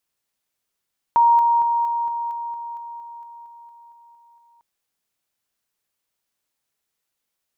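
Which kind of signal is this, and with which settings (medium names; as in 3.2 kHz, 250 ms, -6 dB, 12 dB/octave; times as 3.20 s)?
level ladder 938 Hz -11 dBFS, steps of -3 dB, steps 15, 0.23 s 0.00 s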